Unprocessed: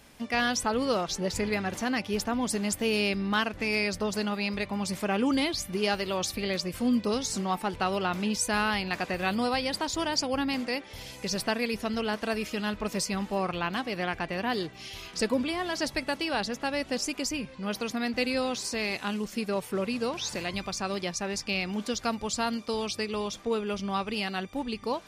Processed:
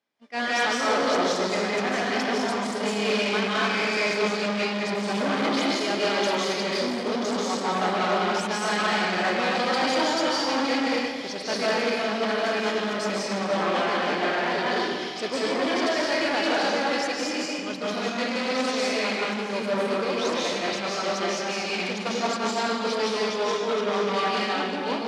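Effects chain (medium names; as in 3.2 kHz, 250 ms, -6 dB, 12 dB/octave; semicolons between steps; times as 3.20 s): in parallel at +0.5 dB: level held to a coarse grid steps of 22 dB; on the sum: algorithmic reverb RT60 2 s, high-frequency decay 0.8×, pre-delay 115 ms, DRR -6.5 dB; hard clipper -22.5 dBFS, distortion -8 dB; band-pass 280–5000 Hz; band-stop 2.7 kHz, Q 13; on a send: echo whose repeats swap between lows and highs 145 ms, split 830 Hz, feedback 77%, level -12.5 dB; on the sum: expander -22 dBFS; trim +5 dB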